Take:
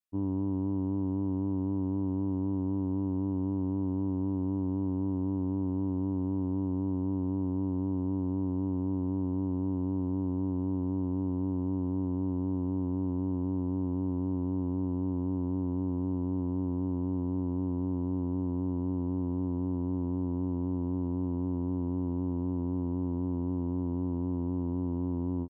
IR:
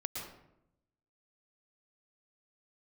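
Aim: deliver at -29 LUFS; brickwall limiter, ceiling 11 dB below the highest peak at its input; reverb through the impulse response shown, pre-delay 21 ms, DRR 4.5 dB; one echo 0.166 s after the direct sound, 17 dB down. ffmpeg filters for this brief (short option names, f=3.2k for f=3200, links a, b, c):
-filter_complex "[0:a]alimiter=level_in=9.5dB:limit=-24dB:level=0:latency=1,volume=-9.5dB,aecho=1:1:166:0.141,asplit=2[a][b];[1:a]atrim=start_sample=2205,adelay=21[c];[b][c]afir=irnorm=-1:irlink=0,volume=-5.5dB[d];[a][d]amix=inputs=2:normalize=0,volume=9.5dB"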